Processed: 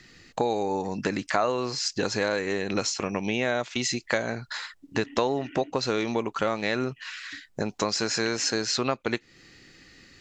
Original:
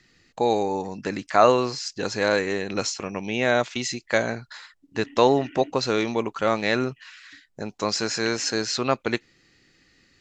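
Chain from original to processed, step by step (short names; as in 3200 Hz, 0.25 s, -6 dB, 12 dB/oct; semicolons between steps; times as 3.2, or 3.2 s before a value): compressor 4:1, threshold -32 dBFS, peak gain reduction 17.5 dB; gain +7.5 dB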